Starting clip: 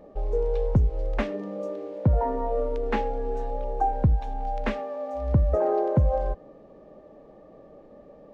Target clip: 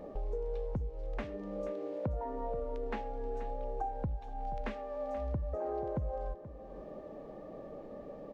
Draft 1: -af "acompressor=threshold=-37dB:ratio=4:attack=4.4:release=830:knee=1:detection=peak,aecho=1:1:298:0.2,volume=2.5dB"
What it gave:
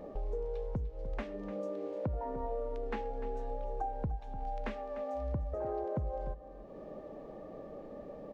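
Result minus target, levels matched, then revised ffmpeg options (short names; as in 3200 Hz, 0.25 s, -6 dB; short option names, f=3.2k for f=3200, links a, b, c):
echo 0.182 s early
-af "acompressor=threshold=-37dB:ratio=4:attack=4.4:release=830:knee=1:detection=peak,aecho=1:1:480:0.2,volume=2.5dB"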